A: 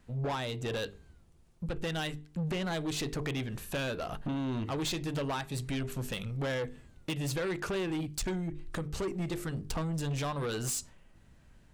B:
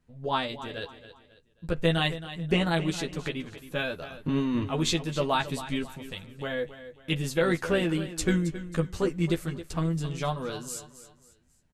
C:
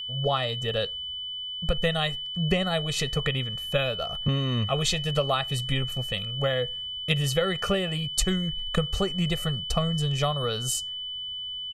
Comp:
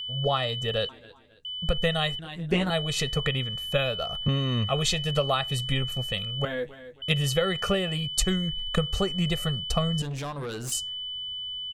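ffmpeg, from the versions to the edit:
-filter_complex "[1:a]asplit=3[a][b][c];[2:a]asplit=5[d][e][f][g][h];[d]atrim=end=0.892[i];[a]atrim=start=0.888:end=1.452[j];[e]atrim=start=1.448:end=2.192[k];[b]atrim=start=2.188:end=2.702[l];[f]atrim=start=2.698:end=6.452[m];[c]atrim=start=6.448:end=7.022[n];[g]atrim=start=7.018:end=10.022[o];[0:a]atrim=start=10.018:end=10.722[p];[h]atrim=start=10.718[q];[i][j]acrossfade=d=0.004:c1=hsin:c2=hsin[r];[r][k]acrossfade=d=0.004:c1=hsin:c2=hsin[s];[s][l]acrossfade=d=0.004:c1=hsin:c2=hsin[t];[t][m]acrossfade=d=0.004:c1=hsin:c2=hsin[u];[u][n]acrossfade=d=0.004:c1=hsin:c2=hsin[v];[v][o]acrossfade=d=0.004:c1=hsin:c2=hsin[w];[w][p]acrossfade=d=0.004:c1=hsin:c2=hsin[x];[x][q]acrossfade=d=0.004:c1=hsin:c2=hsin"

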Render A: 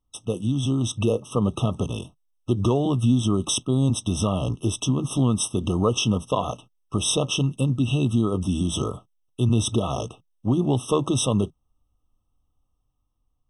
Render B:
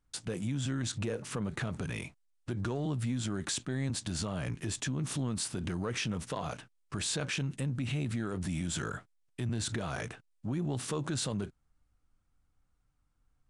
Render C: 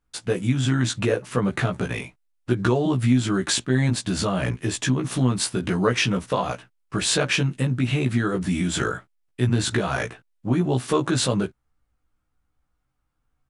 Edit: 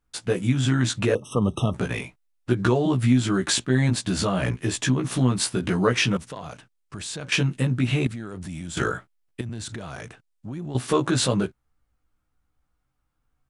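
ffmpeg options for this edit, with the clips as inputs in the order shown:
-filter_complex "[1:a]asplit=3[a][b][c];[2:a]asplit=5[d][e][f][g][h];[d]atrim=end=1.152[i];[0:a]atrim=start=1.148:end=1.742[j];[e]atrim=start=1.738:end=6.172[k];[a]atrim=start=6.168:end=7.322[l];[f]atrim=start=7.318:end=8.072[m];[b]atrim=start=8.068:end=8.772[n];[g]atrim=start=8.768:end=9.412[o];[c]atrim=start=9.408:end=10.752[p];[h]atrim=start=10.748[q];[i][j]acrossfade=d=0.004:c1=hsin:c2=hsin[r];[r][k]acrossfade=d=0.004:c1=hsin:c2=hsin[s];[s][l]acrossfade=d=0.004:c1=hsin:c2=hsin[t];[t][m]acrossfade=d=0.004:c1=hsin:c2=hsin[u];[u][n]acrossfade=d=0.004:c1=hsin:c2=hsin[v];[v][o]acrossfade=d=0.004:c1=hsin:c2=hsin[w];[w][p]acrossfade=d=0.004:c1=hsin:c2=hsin[x];[x][q]acrossfade=d=0.004:c1=hsin:c2=hsin"

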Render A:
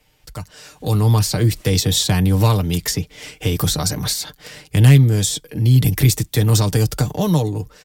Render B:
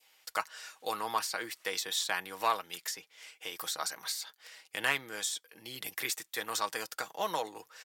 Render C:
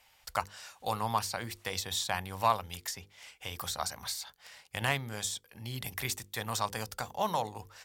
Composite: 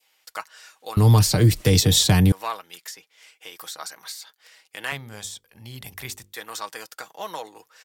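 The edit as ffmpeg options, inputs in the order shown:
-filter_complex "[1:a]asplit=3[a][b][c];[a]atrim=end=0.972[d];[0:a]atrim=start=0.968:end=2.322[e];[b]atrim=start=2.318:end=4.922[f];[2:a]atrim=start=4.918:end=6.332[g];[c]atrim=start=6.328[h];[d][e]acrossfade=d=0.004:c1=hsin:c2=hsin[i];[i][f]acrossfade=d=0.004:c1=hsin:c2=hsin[j];[j][g]acrossfade=d=0.004:c1=hsin:c2=hsin[k];[k][h]acrossfade=d=0.004:c1=hsin:c2=hsin"

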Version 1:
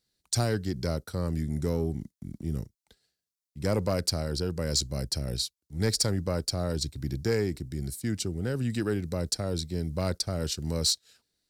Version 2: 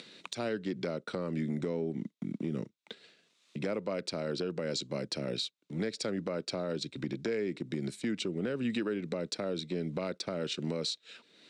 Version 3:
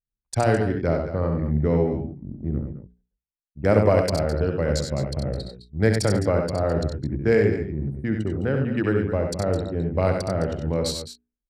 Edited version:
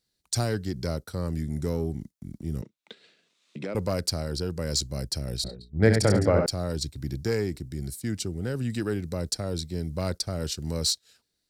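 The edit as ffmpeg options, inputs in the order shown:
-filter_complex "[0:a]asplit=3[a][b][c];[a]atrim=end=2.622[d];[1:a]atrim=start=2.618:end=3.752[e];[b]atrim=start=3.748:end=5.442[f];[2:a]atrim=start=5.438:end=6.462[g];[c]atrim=start=6.458[h];[d][e]acrossfade=d=0.004:c1=hsin:c2=hsin[i];[i][f]acrossfade=d=0.004:c1=hsin:c2=hsin[j];[j][g]acrossfade=d=0.004:c1=hsin:c2=hsin[k];[k][h]acrossfade=d=0.004:c1=hsin:c2=hsin"

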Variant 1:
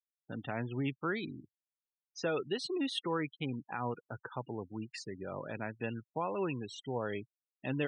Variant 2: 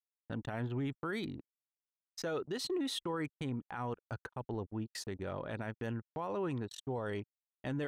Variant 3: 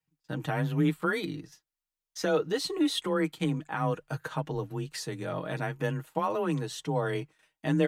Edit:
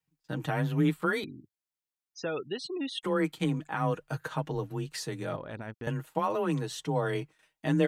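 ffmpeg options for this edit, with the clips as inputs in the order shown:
-filter_complex "[2:a]asplit=3[a][b][c];[a]atrim=end=1.242[d];[0:a]atrim=start=1.238:end=3.032[e];[b]atrim=start=3.028:end=5.362[f];[1:a]atrim=start=5.358:end=5.872[g];[c]atrim=start=5.868[h];[d][e]acrossfade=d=0.004:c1=hsin:c2=hsin[i];[i][f]acrossfade=d=0.004:c1=hsin:c2=hsin[j];[j][g]acrossfade=d=0.004:c1=hsin:c2=hsin[k];[k][h]acrossfade=d=0.004:c1=hsin:c2=hsin"

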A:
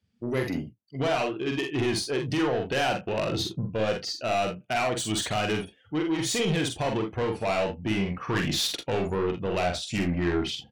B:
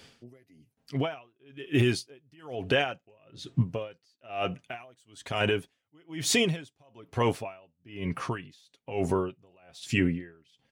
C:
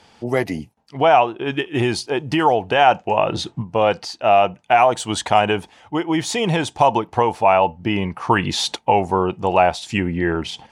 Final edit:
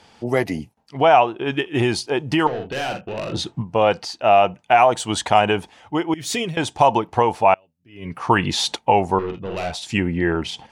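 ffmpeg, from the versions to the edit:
-filter_complex "[0:a]asplit=2[a][b];[1:a]asplit=2[c][d];[2:a]asplit=5[e][f][g][h][i];[e]atrim=end=2.472[j];[a]atrim=start=2.468:end=3.332[k];[f]atrim=start=3.328:end=6.142[l];[c]atrim=start=6.138:end=6.572[m];[g]atrim=start=6.568:end=7.542[n];[d]atrim=start=7.538:end=8.182[o];[h]atrim=start=8.178:end=9.192[p];[b]atrim=start=9.188:end=9.722[q];[i]atrim=start=9.718[r];[j][k]acrossfade=d=0.004:c1=hsin:c2=hsin[s];[s][l]acrossfade=d=0.004:c1=hsin:c2=hsin[t];[t][m]acrossfade=d=0.004:c1=hsin:c2=hsin[u];[u][n]acrossfade=d=0.004:c1=hsin:c2=hsin[v];[v][o]acrossfade=d=0.004:c1=hsin:c2=hsin[w];[w][p]acrossfade=d=0.004:c1=hsin:c2=hsin[x];[x][q]acrossfade=d=0.004:c1=hsin:c2=hsin[y];[y][r]acrossfade=d=0.004:c1=hsin:c2=hsin"

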